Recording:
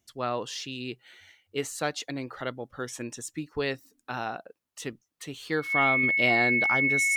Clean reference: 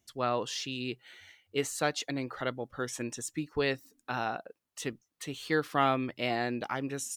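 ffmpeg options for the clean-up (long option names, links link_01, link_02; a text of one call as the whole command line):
ffmpeg -i in.wav -af "bandreject=frequency=2200:width=30,asetnsamples=nb_out_samples=441:pad=0,asendcmd='6.03 volume volume -5dB',volume=0dB" out.wav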